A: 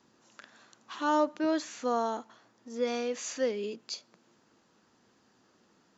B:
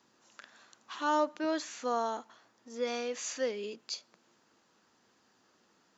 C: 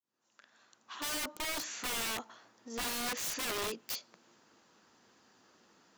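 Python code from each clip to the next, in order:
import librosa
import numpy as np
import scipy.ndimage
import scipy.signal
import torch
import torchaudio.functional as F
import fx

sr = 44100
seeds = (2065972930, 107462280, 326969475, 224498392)

y1 = fx.low_shelf(x, sr, hz=420.0, db=-7.5)
y2 = fx.fade_in_head(y1, sr, length_s=1.86)
y2 = (np.mod(10.0 ** (34.5 / 20.0) * y2 + 1.0, 2.0) - 1.0) / 10.0 ** (34.5 / 20.0)
y2 = y2 * librosa.db_to_amplitude(3.5)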